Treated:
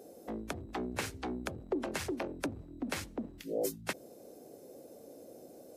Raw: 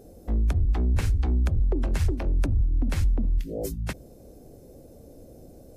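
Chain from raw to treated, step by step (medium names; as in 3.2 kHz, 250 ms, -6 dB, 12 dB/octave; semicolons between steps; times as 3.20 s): high-pass 320 Hz 12 dB/octave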